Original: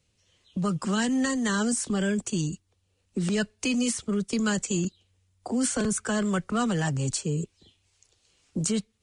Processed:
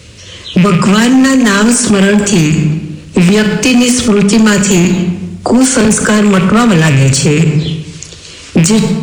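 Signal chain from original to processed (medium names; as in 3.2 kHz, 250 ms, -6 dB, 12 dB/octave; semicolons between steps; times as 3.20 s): rattle on loud lows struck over -33 dBFS, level -29 dBFS; high-pass 42 Hz; peaking EQ 790 Hz -10 dB 0.35 oct; hum notches 50/100/150/200/250 Hz; in parallel at +3 dB: compression 6:1, threshold -42 dBFS, peak gain reduction 18.5 dB; on the sum: treble shelf 8.7 kHz -10.5 dB; overload inside the chain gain 22.5 dB; reverberation RT60 1.1 s, pre-delay 18 ms, DRR 10 dB; loudness maximiser +30.5 dB; trim -1 dB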